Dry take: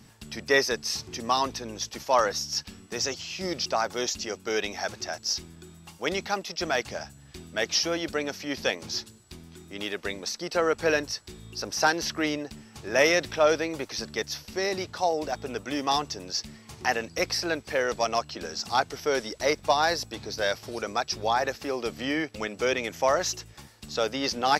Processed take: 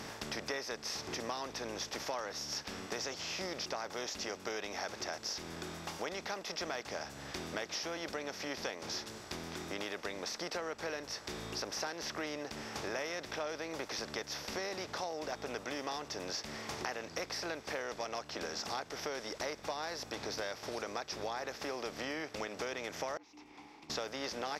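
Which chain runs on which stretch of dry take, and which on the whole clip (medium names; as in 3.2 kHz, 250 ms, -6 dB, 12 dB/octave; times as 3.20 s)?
23.17–23.90 s: frequency shift -67 Hz + compression 2:1, threshold -52 dBFS + vowel filter u
whole clip: spectral levelling over time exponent 0.6; compression 6:1, threshold -30 dBFS; trim -6.5 dB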